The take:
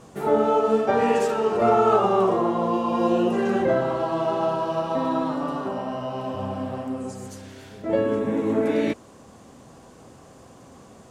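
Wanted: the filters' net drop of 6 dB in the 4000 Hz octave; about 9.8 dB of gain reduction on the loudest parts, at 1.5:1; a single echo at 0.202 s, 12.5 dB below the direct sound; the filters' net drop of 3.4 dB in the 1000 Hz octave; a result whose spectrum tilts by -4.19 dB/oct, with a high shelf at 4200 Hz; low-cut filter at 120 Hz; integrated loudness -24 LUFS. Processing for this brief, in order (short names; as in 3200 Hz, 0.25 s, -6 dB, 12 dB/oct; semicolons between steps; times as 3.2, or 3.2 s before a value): HPF 120 Hz; bell 1000 Hz -4 dB; bell 4000 Hz -5 dB; high shelf 4200 Hz -6.5 dB; compressor 1.5:1, threshold -45 dBFS; echo 0.202 s -12.5 dB; gain +9 dB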